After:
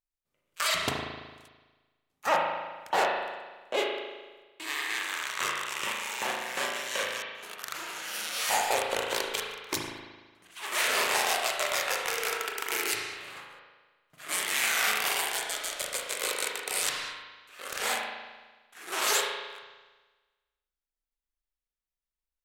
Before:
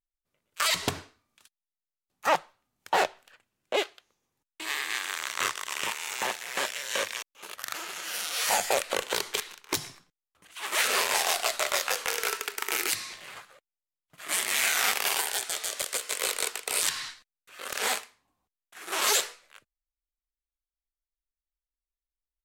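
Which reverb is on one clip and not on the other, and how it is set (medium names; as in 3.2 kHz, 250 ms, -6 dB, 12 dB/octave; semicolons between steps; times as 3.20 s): spring tank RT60 1.3 s, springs 37 ms, chirp 40 ms, DRR -0.5 dB; trim -3 dB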